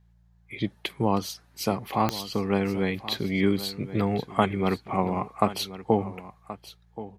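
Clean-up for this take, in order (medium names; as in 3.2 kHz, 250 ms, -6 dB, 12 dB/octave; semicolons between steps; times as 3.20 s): de-click; de-hum 57.4 Hz, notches 3; inverse comb 1077 ms -15 dB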